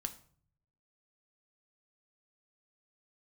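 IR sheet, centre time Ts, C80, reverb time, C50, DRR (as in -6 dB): 7 ms, 18.0 dB, 0.50 s, 14.5 dB, 6.5 dB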